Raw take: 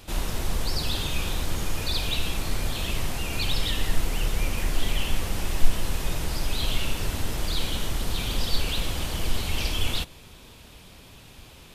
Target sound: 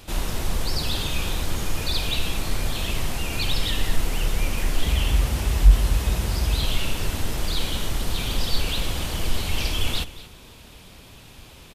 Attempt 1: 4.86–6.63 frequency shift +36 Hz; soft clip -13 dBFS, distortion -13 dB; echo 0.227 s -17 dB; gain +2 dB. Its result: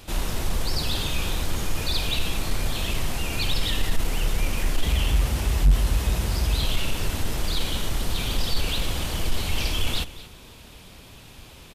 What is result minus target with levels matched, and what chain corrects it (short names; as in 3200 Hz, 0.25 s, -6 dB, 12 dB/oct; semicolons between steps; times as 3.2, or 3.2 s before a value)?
soft clip: distortion +11 dB
4.86–6.63 frequency shift +36 Hz; soft clip -3.5 dBFS, distortion -25 dB; echo 0.227 s -17 dB; gain +2 dB